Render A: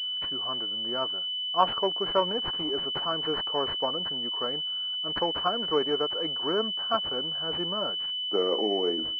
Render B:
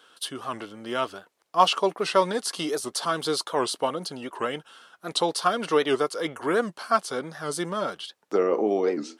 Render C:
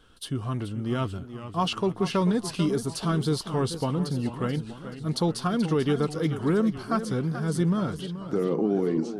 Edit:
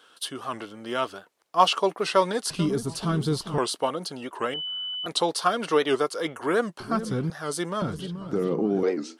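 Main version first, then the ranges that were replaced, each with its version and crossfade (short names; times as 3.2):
B
2.5–3.58 from C
4.54–5.06 from A
6.8–7.3 from C
7.82–8.83 from C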